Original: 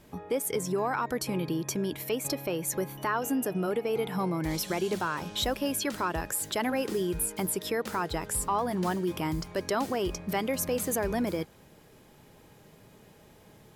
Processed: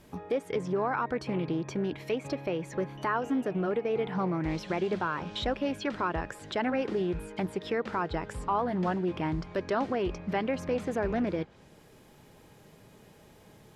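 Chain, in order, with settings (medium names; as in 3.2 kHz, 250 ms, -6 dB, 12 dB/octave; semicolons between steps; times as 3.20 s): low-pass that closes with the level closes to 2.9 kHz, closed at -29.5 dBFS; loudspeaker Doppler distortion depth 0.22 ms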